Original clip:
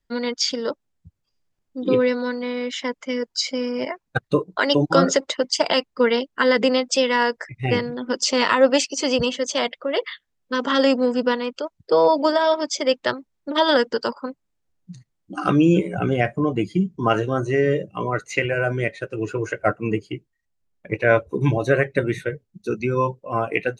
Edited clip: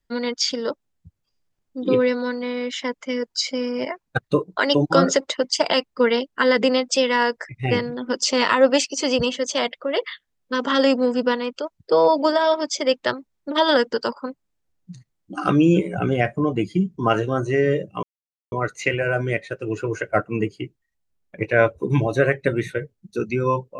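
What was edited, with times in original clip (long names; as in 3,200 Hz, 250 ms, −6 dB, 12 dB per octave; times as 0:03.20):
0:18.03: splice in silence 0.49 s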